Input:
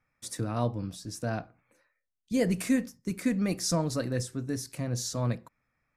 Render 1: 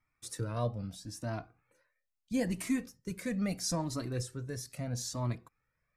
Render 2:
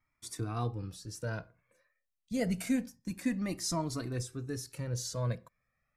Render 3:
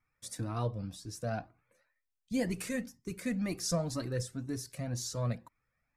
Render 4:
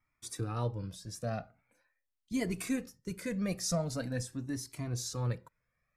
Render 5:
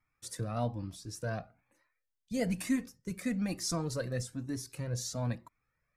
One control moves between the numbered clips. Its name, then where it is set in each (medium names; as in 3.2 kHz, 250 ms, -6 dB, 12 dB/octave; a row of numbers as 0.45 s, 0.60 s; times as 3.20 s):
Shepard-style flanger, rate: 0.76 Hz, 0.27 Hz, 2 Hz, 0.43 Hz, 1.1 Hz